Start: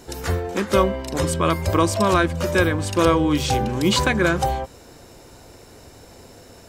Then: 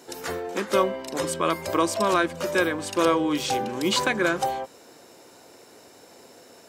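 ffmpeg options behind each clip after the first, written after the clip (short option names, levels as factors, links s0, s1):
-af "highpass=260,volume=0.708"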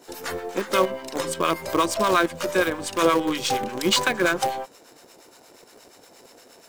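-filter_complex "[0:a]acrossover=split=840[s0][s1];[s0]aeval=exprs='val(0)*(1-0.7/2+0.7/2*cos(2*PI*8.5*n/s))':c=same[s2];[s1]aeval=exprs='val(0)*(1-0.7/2-0.7/2*cos(2*PI*8.5*n/s))':c=same[s3];[s2][s3]amix=inputs=2:normalize=0,lowshelf=f=450:g=-3.5,asplit=2[s4][s5];[s5]acrusher=bits=5:dc=4:mix=0:aa=0.000001,volume=0.398[s6];[s4][s6]amix=inputs=2:normalize=0,volume=1.41"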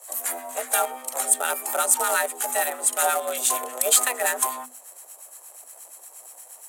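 -af "lowpass=10000,afreqshift=250,aexciter=amount=14.9:drive=6.2:freq=7700,volume=0.596"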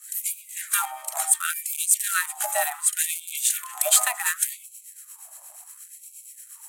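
-af "afftfilt=real='re*gte(b*sr/1024,550*pow(2200/550,0.5+0.5*sin(2*PI*0.69*pts/sr)))':imag='im*gte(b*sr/1024,550*pow(2200/550,0.5+0.5*sin(2*PI*0.69*pts/sr)))':win_size=1024:overlap=0.75"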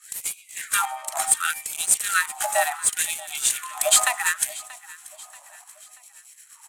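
-af "adynamicsmooth=sensitivity=7.5:basefreq=5900,aecho=1:1:633|1266|1899:0.1|0.046|0.0212,volume=1.58"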